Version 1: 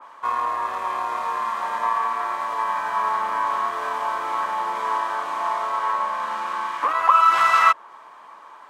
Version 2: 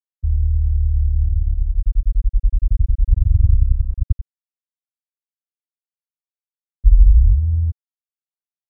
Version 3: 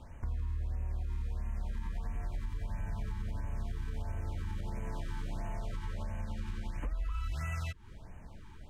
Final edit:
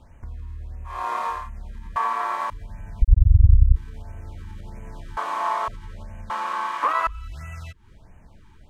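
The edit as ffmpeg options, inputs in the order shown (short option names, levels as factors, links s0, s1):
-filter_complex "[0:a]asplit=4[s0][s1][s2][s3];[2:a]asplit=6[s4][s5][s6][s7][s8][s9];[s4]atrim=end=1.08[s10];[s0]atrim=start=0.84:end=1.5[s11];[s5]atrim=start=1.26:end=1.962[s12];[s1]atrim=start=1.958:end=2.502[s13];[s6]atrim=start=2.498:end=3.022[s14];[1:a]atrim=start=3.018:end=3.762[s15];[s7]atrim=start=3.758:end=5.172[s16];[s2]atrim=start=5.168:end=5.682[s17];[s8]atrim=start=5.678:end=6.302[s18];[s3]atrim=start=6.298:end=7.072[s19];[s9]atrim=start=7.068[s20];[s10][s11]acrossfade=d=0.24:c1=tri:c2=tri[s21];[s21][s12]acrossfade=d=0.24:c1=tri:c2=tri[s22];[s22][s13]acrossfade=d=0.004:c1=hsin:c2=hsin[s23];[s23][s14]acrossfade=d=0.004:c1=hsin:c2=hsin[s24];[s24][s15]acrossfade=d=0.004:c1=hsin:c2=hsin[s25];[s25][s16]acrossfade=d=0.004:c1=hsin:c2=hsin[s26];[s26][s17]acrossfade=d=0.004:c1=hsin:c2=hsin[s27];[s27][s18]acrossfade=d=0.004:c1=hsin:c2=hsin[s28];[s28][s19]acrossfade=d=0.004:c1=hsin:c2=hsin[s29];[s29][s20]acrossfade=d=0.004:c1=hsin:c2=hsin"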